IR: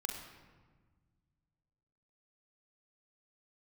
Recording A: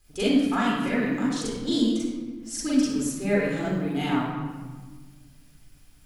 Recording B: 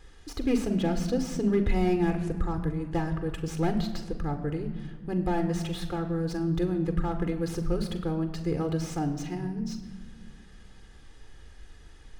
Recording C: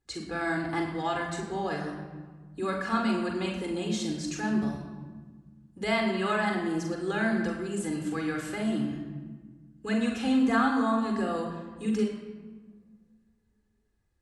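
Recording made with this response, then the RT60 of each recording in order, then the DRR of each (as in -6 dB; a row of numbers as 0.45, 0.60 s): C; 1.4, 1.7, 1.5 s; -7.0, 7.5, 1.5 dB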